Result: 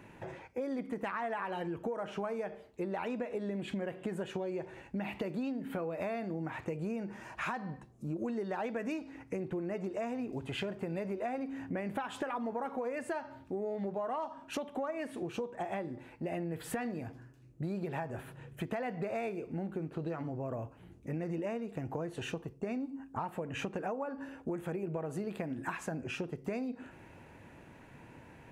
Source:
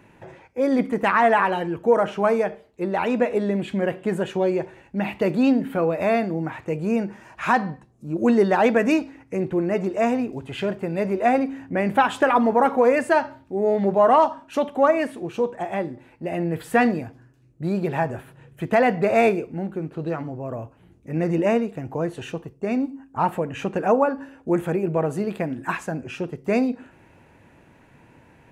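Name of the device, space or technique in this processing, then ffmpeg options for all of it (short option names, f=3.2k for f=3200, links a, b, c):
serial compression, peaks first: -af "acompressor=threshold=-27dB:ratio=6,acompressor=threshold=-36dB:ratio=2,volume=-1.5dB"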